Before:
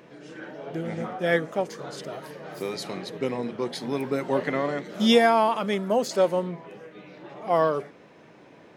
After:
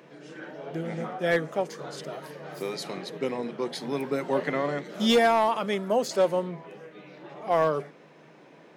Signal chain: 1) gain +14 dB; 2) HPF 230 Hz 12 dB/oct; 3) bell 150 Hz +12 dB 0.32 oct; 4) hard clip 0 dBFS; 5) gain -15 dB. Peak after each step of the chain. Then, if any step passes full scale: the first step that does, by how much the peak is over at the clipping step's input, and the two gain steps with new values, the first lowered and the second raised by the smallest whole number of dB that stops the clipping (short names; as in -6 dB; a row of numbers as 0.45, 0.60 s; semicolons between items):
+7.0, +7.0, +7.0, 0.0, -15.0 dBFS; step 1, 7.0 dB; step 1 +7 dB, step 5 -8 dB